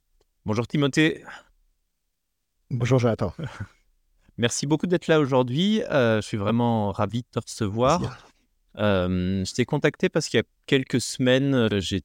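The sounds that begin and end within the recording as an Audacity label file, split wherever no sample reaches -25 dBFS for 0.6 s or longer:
2.710000	3.630000	sound
4.390000	8.080000	sound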